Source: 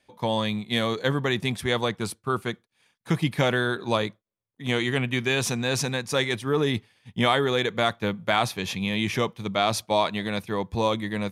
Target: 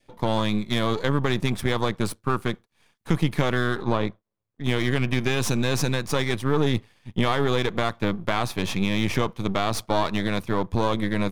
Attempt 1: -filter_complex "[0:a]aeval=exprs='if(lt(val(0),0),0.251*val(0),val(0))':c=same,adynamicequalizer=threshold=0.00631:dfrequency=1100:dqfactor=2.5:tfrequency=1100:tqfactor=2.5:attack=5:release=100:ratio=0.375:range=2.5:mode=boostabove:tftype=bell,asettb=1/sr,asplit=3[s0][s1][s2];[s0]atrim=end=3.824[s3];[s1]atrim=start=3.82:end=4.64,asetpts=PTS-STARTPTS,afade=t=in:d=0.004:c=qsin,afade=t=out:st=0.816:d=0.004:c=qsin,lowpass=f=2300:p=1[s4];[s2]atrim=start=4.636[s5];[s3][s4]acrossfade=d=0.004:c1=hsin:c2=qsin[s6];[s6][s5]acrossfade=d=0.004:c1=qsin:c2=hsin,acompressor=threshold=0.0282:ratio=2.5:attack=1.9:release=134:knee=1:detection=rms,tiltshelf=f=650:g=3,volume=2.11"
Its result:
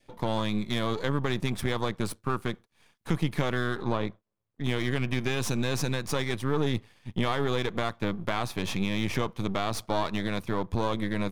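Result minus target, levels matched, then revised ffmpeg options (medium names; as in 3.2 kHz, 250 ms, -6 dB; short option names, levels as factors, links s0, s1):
compression: peak gain reduction +5 dB
-filter_complex "[0:a]aeval=exprs='if(lt(val(0),0),0.251*val(0),val(0))':c=same,adynamicequalizer=threshold=0.00631:dfrequency=1100:dqfactor=2.5:tfrequency=1100:tqfactor=2.5:attack=5:release=100:ratio=0.375:range=2.5:mode=boostabove:tftype=bell,asettb=1/sr,asplit=3[s0][s1][s2];[s0]atrim=end=3.824[s3];[s1]atrim=start=3.82:end=4.64,asetpts=PTS-STARTPTS,afade=t=in:d=0.004:c=qsin,afade=t=out:st=0.816:d=0.004:c=qsin,lowpass=f=2300:p=1[s4];[s2]atrim=start=4.636[s5];[s3][s4]acrossfade=d=0.004:c1=hsin:c2=qsin[s6];[s6][s5]acrossfade=d=0.004:c1=qsin:c2=hsin,acompressor=threshold=0.075:ratio=2.5:attack=1.9:release=134:knee=1:detection=rms,tiltshelf=f=650:g=3,volume=2.11"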